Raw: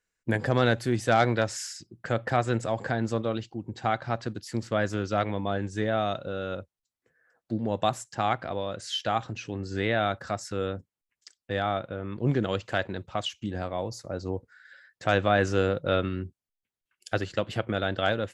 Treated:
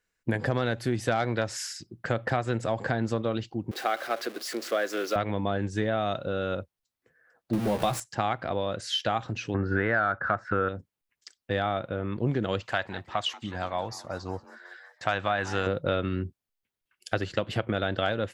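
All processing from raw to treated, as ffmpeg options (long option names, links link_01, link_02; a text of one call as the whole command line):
ffmpeg -i in.wav -filter_complex "[0:a]asettb=1/sr,asplit=3[link_01][link_02][link_03];[link_01]atrim=end=3.714[link_04];[link_02]atrim=start=3.71:end=5.16,asetpts=PTS-STARTPTS,afade=type=in:duration=0.004:curve=qsin,afade=type=out:start_time=1.446:duration=0.004:curve=qsin,aeval=exprs='val(0)+0.5*0.0141*sgn(val(0))':channel_layout=same,highpass=frequency=340:width=0.5412,highpass=frequency=340:width=1.3066,equalizer=frequency=910:width=6.3:gain=-13[link_05];[link_03]atrim=start=5.156[link_06];[link_04][link_05]acrossfade=duration=0.004:curve1=hsin:curve2=qsin[link_07];[link_07][link_06]acrossfade=duration=0.004:curve1=qsin:curve2=hsin,asettb=1/sr,asplit=3[link_08][link_09][link_10];[link_08]atrim=end=7.534[link_11];[link_09]atrim=start=7.53:end=8,asetpts=PTS-STARTPTS,afade=type=in:duration=0.004:curve=qsin,afade=type=out:start_time=0.466:duration=0.004:curve=qsin,aeval=exprs='val(0)+0.5*0.0299*sgn(val(0))':channel_layout=same,equalizer=frequency=9400:width_type=o:width=0.21:gain=5,asplit=2[link_12][link_13];[link_13]adelay=15,volume=-4.5dB[link_14];[link_12][link_14]amix=inputs=2:normalize=0,atrim=end_sample=20727[link_15];[link_10]atrim=start=7.996[link_16];[link_11][link_15]acrossfade=duration=0.004:curve1=hsin:curve2=qsin[link_17];[link_17][link_16]acrossfade=duration=0.004:curve1=qsin:curve2=hsin,asettb=1/sr,asplit=3[link_18][link_19][link_20];[link_18]atrim=end=9.544[link_21];[link_19]atrim=start=9.54:end=10.69,asetpts=PTS-STARTPTS,afade=type=in:duration=0.004:curve=qsin,afade=type=out:start_time=1.146:duration=0.004:curve=qsin,lowpass=frequency=1500:width_type=q:width=4.5,acontrast=29[link_22];[link_20]atrim=start=10.686[link_23];[link_21][link_22]acrossfade=duration=0.004:curve1=hsin:curve2=qsin[link_24];[link_24][link_23]acrossfade=duration=0.004:curve1=qsin:curve2=hsin,asettb=1/sr,asplit=3[link_25][link_26][link_27];[link_25]atrim=end=12.634[link_28];[link_26]atrim=start=12.63:end=15.67,asetpts=PTS-STARTPTS,afade=type=in:duration=0.004:curve=qsin,afade=type=out:start_time=3.036:duration=0.004:curve=qsin,lowshelf=frequency=620:width_type=q:width=1.5:gain=-6.5,asplit=6[link_29][link_30][link_31][link_32][link_33][link_34];[link_30]adelay=184,afreqshift=130,volume=-19.5dB[link_35];[link_31]adelay=368,afreqshift=260,volume=-23.9dB[link_36];[link_32]adelay=552,afreqshift=390,volume=-28.4dB[link_37];[link_33]adelay=736,afreqshift=520,volume=-32.8dB[link_38];[link_34]adelay=920,afreqshift=650,volume=-37.2dB[link_39];[link_29][link_35][link_36][link_37][link_38][link_39]amix=inputs=6:normalize=0,atrim=end_sample=134064[link_40];[link_27]atrim=start=15.666[link_41];[link_28][link_40]acrossfade=duration=0.004:curve1=hsin:curve2=qsin[link_42];[link_42][link_41]acrossfade=duration=0.004:curve1=qsin:curve2=hsin,equalizer=frequency=7300:width=1.6:gain=-4,acompressor=threshold=-26dB:ratio=6,volume=3.5dB" out.wav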